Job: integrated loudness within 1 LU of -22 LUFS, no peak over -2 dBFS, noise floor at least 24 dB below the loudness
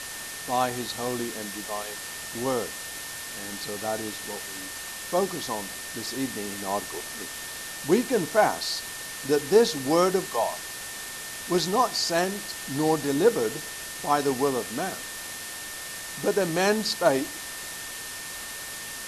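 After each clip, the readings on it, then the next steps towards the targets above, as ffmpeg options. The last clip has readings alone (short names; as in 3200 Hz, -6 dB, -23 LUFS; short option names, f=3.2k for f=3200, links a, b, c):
steady tone 1800 Hz; tone level -42 dBFS; noise floor -37 dBFS; noise floor target -52 dBFS; loudness -27.5 LUFS; peak -7.0 dBFS; loudness target -22.0 LUFS
-> -af "bandreject=f=1.8k:w=30"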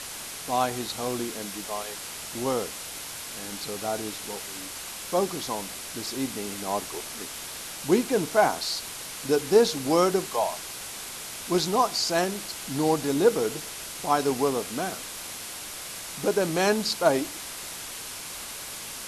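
steady tone none; noise floor -38 dBFS; noise floor target -52 dBFS
-> -af "afftdn=nr=14:nf=-38"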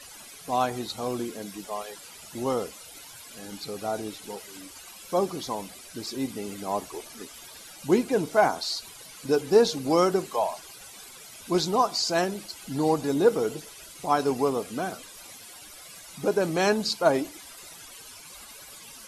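noise floor -46 dBFS; noise floor target -51 dBFS
-> -af "afftdn=nr=6:nf=-46"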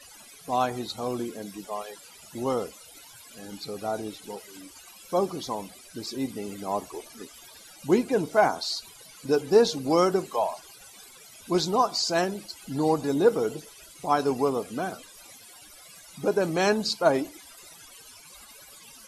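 noise floor -50 dBFS; noise floor target -51 dBFS
-> -af "afftdn=nr=6:nf=-50"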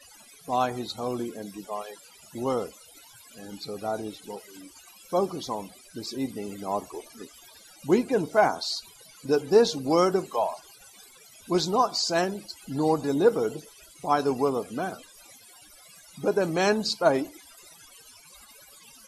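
noise floor -53 dBFS; loudness -27.0 LUFS; peak -7.5 dBFS; loudness target -22.0 LUFS
-> -af "volume=5dB"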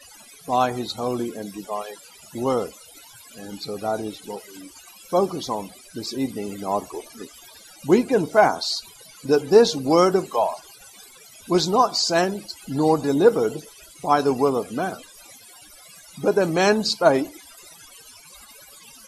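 loudness -22.0 LUFS; peak -2.5 dBFS; noise floor -48 dBFS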